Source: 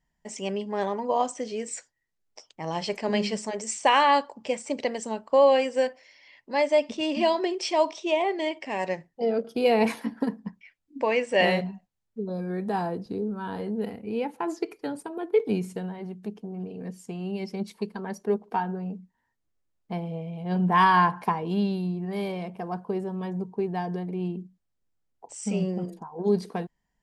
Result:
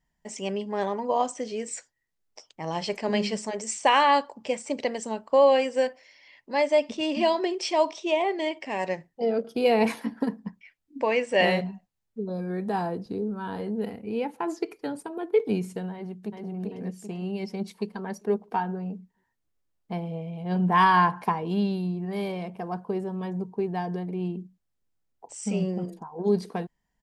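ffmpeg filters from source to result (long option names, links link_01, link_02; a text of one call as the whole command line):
ffmpeg -i in.wav -filter_complex "[0:a]asplit=2[link_01][link_02];[link_02]afade=type=in:start_time=15.93:duration=0.01,afade=type=out:start_time=16.5:duration=0.01,aecho=0:1:390|780|1170|1560|1950|2340|2730:0.749894|0.374947|0.187474|0.0937368|0.0468684|0.0234342|0.0117171[link_03];[link_01][link_03]amix=inputs=2:normalize=0" out.wav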